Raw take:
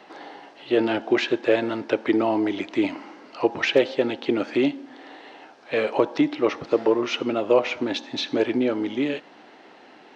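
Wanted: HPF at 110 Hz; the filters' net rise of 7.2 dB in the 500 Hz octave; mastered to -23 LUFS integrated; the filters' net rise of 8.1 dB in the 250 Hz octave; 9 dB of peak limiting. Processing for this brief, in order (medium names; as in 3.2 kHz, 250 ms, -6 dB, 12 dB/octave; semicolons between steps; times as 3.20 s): high-pass 110 Hz; peaking EQ 250 Hz +8.5 dB; peaking EQ 500 Hz +6 dB; trim -3.5 dB; peak limiter -11 dBFS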